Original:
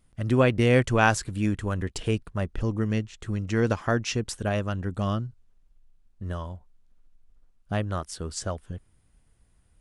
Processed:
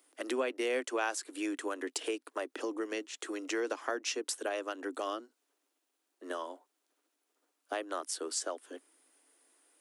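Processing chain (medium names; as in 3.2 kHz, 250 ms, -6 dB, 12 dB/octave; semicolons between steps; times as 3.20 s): steep high-pass 270 Hz 96 dB/octave; treble shelf 7.5 kHz +8.5 dB; compression 3:1, threshold -37 dBFS, peak gain reduction 16 dB; trim +2.5 dB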